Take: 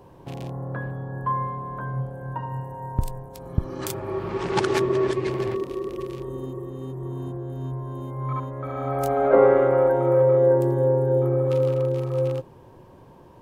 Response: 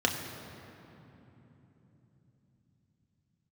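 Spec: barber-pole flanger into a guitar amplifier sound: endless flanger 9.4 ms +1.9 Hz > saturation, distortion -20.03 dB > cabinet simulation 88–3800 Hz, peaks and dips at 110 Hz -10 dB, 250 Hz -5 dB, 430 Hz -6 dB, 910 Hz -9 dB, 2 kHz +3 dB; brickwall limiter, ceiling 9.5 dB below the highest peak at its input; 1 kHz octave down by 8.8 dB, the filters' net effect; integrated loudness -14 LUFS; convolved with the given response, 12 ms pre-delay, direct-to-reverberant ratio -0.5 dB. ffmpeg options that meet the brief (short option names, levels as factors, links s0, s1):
-filter_complex "[0:a]equalizer=f=1000:t=o:g=-7,alimiter=limit=0.168:level=0:latency=1,asplit=2[s0][s1];[1:a]atrim=start_sample=2205,adelay=12[s2];[s1][s2]afir=irnorm=-1:irlink=0,volume=0.316[s3];[s0][s3]amix=inputs=2:normalize=0,asplit=2[s4][s5];[s5]adelay=9.4,afreqshift=1.9[s6];[s4][s6]amix=inputs=2:normalize=1,asoftclip=threshold=0.158,highpass=88,equalizer=f=110:t=q:w=4:g=-10,equalizer=f=250:t=q:w=4:g=-5,equalizer=f=430:t=q:w=4:g=-6,equalizer=f=910:t=q:w=4:g=-9,equalizer=f=2000:t=q:w=4:g=3,lowpass=f=3800:w=0.5412,lowpass=f=3800:w=1.3066,volume=7.5"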